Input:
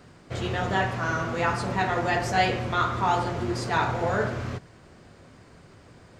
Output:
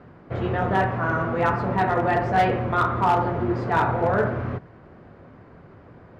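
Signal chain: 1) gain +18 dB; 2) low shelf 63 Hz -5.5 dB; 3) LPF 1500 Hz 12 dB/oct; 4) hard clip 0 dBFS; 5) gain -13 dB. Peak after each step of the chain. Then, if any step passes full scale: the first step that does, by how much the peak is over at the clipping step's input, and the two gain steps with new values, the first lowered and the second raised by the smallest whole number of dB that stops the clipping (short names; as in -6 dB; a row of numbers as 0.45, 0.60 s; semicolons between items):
+7.0, +7.0, +6.0, 0.0, -13.0 dBFS; step 1, 6.0 dB; step 1 +12 dB, step 5 -7 dB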